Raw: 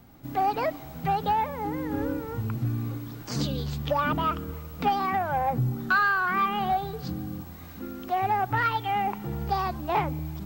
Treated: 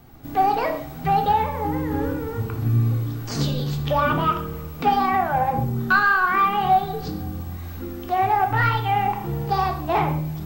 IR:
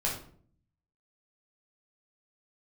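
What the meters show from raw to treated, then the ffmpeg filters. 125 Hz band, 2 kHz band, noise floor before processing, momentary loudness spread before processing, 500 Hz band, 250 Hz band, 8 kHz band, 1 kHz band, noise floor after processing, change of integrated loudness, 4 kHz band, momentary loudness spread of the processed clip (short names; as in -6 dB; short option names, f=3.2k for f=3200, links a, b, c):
+7.0 dB, +5.5 dB, -43 dBFS, 10 LU, +5.5 dB, +4.5 dB, n/a, +6.0 dB, -35 dBFS, +5.5 dB, +4.5 dB, 11 LU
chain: -filter_complex "[0:a]asplit=2[a][b];[1:a]atrim=start_sample=2205,atrim=end_sample=6174,asetrate=32634,aresample=44100[c];[b][c]afir=irnorm=-1:irlink=0,volume=-7.5dB[d];[a][d]amix=inputs=2:normalize=0"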